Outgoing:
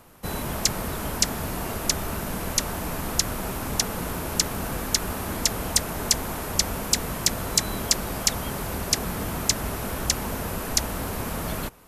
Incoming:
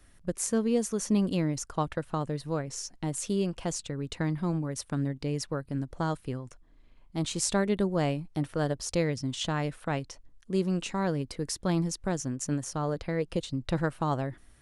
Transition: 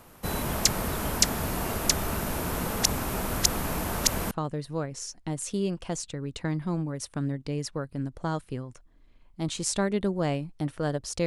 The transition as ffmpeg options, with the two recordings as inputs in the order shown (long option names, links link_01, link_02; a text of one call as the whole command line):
ffmpeg -i cue0.wav -i cue1.wav -filter_complex "[0:a]apad=whole_dur=11.26,atrim=end=11.26,asplit=2[link_01][link_02];[link_01]atrim=end=2.342[link_03];[link_02]atrim=start=2.338:end=4.312,asetpts=PTS-STARTPTS,areverse[link_04];[1:a]atrim=start=2.068:end=9.02[link_05];[link_03][link_04]acrossfade=duration=0.004:curve1=hsin:curve2=hsin[link_06];[link_06][link_05]acrossfade=duration=0.004:curve1=hsin:curve2=hsin" out.wav